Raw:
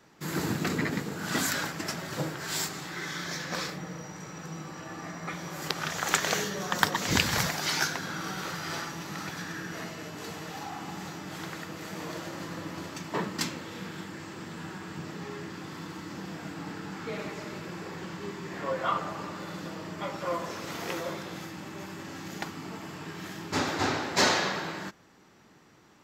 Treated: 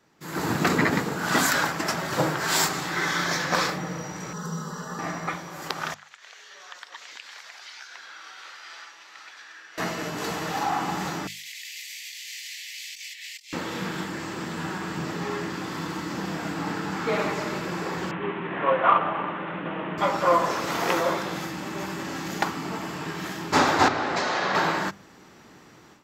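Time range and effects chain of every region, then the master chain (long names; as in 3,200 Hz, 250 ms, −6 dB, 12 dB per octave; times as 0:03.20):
0:04.33–0:04.99: phaser with its sweep stopped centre 470 Hz, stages 8 + comb filter 4.8 ms, depth 59%
0:05.94–0:09.78: first difference + downward compressor 5 to 1, threshold −39 dBFS + band-pass filter 450–2,700 Hz
0:11.27–0:13.53: Butterworth high-pass 2,000 Hz 72 dB per octave + compressor whose output falls as the input rises −49 dBFS
0:18.11–0:19.98: variable-slope delta modulation 16 kbit/s + high-pass filter 120 Hz
0:23.88–0:24.55: high-frequency loss of the air 64 metres + notch filter 940 Hz + downward compressor 12 to 1, threshold −31 dBFS
whole clip: mains-hum notches 50/100/150/200 Hz; dynamic equaliser 960 Hz, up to +7 dB, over −45 dBFS, Q 0.81; automatic gain control gain up to 13 dB; level −5 dB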